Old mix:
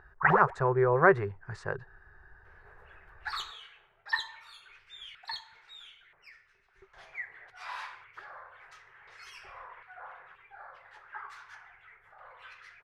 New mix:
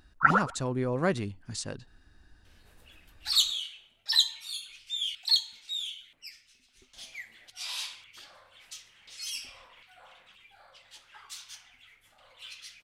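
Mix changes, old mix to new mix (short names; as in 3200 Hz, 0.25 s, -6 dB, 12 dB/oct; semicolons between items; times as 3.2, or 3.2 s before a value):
first sound: add synth low-pass 1400 Hz, resonance Q 12; master: remove EQ curve 100 Hz 0 dB, 150 Hz +3 dB, 270 Hz -21 dB, 390 Hz +10 dB, 550 Hz +3 dB, 870 Hz +10 dB, 1700 Hz +11 dB, 3100 Hz -15 dB, 5200 Hz -18 dB, 8800 Hz -24 dB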